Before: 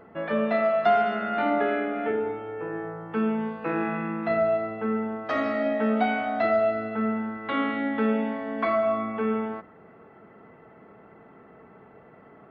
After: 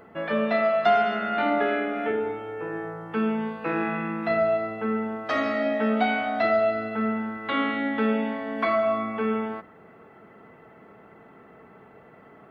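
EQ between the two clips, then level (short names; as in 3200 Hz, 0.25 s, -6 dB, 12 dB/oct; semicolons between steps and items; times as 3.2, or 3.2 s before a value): high shelf 2900 Hz +9 dB; 0.0 dB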